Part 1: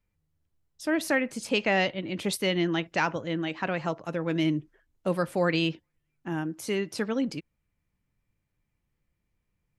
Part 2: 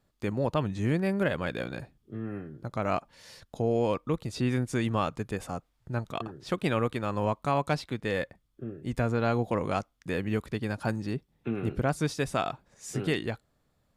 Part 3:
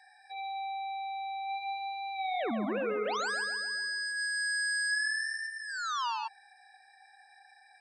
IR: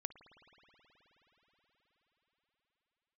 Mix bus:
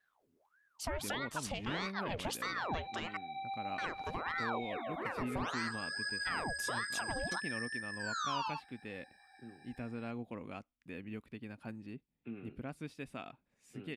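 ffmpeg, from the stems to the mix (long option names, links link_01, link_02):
-filter_complex "[0:a]acompressor=threshold=-27dB:ratio=6,aeval=exprs='val(0)*sin(2*PI*970*n/s+970*0.75/1.6*sin(2*PI*1.6*n/s))':channel_layout=same,volume=2.5dB,asplit=3[link_01][link_02][link_03];[link_01]atrim=end=3.17,asetpts=PTS-STARTPTS,afade=type=out:start_time=3.166:duration=0.004:curve=hsin[link_04];[link_02]atrim=start=3.17:end=3.78,asetpts=PTS-STARTPTS,volume=0[link_05];[link_03]atrim=start=3.78,asetpts=PTS-STARTPTS,afade=type=in:duration=0.004:curve=hsin[link_06];[link_04][link_05][link_06]concat=n=3:v=0:a=1[link_07];[1:a]equalizer=frequency=250:width_type=o:width=0.67:gain=9,equalizer=frequency=2500:width_type=o:width=0.67:gain=9,equalizer=frequency=6300:width_type=o:width=0.67:gain=-7,adelay=800,volume=-19dB[link_08];[2:a]flanger=delay=17:depth=5.2:speed=1.3,highpass=470,adelay=2300,volume=-0.5dB[link_09];[link_07][link_09]amix=inputs=2:normalize=0,alimiter=level_in=3dB:limit=-24dB:level=0:latency=1:release=356,volume=-3dB,volume=0dB[link_10];[link_08][link_10]amix=inputs=2:normalize=0"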